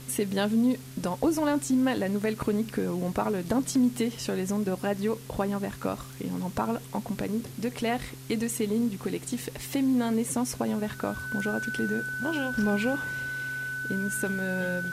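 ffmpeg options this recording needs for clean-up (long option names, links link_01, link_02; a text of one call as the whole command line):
ffmpeg -i in.wav -af "adeclick=threshold=4,bandreject=frequency=131.6:width_type=h:width=4,bandreject=frequency=263.2:width_type=h:width=4,bandreject=frequency=394.8:width_type=h:width=4,bandreject=frequency=1500:width=30,afwtdn=0.0035" out.wav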